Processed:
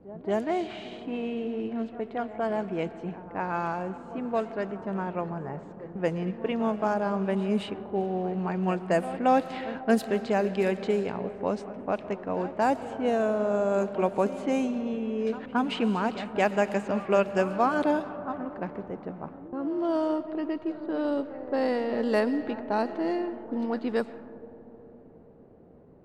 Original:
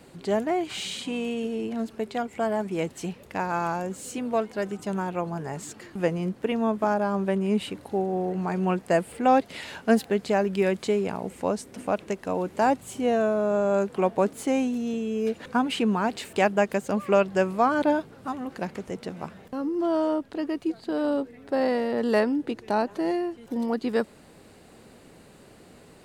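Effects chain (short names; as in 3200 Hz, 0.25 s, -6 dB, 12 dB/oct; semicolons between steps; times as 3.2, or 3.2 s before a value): pre-echo 0.224 s -15.5 dB; digital reverb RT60 4.6 s, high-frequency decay 0.65×, pre-delay 75 ms, DRR 12 dB; low-pass opened by the level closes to 610 Hz, open at -18 dBFS; gain -2.5 dB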